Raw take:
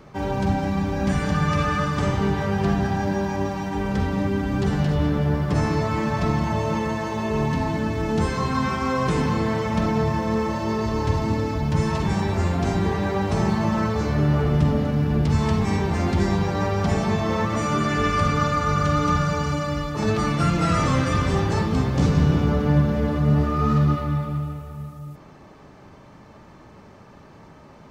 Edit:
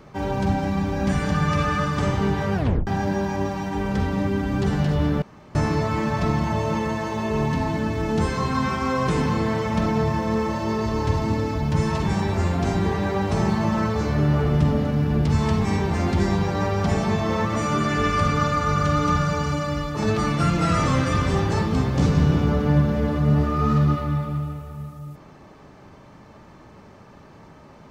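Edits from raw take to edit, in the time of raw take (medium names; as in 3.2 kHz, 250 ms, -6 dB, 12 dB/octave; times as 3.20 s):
2.55 s: tape stop 0.32 s
5.22–5.55 s: room tone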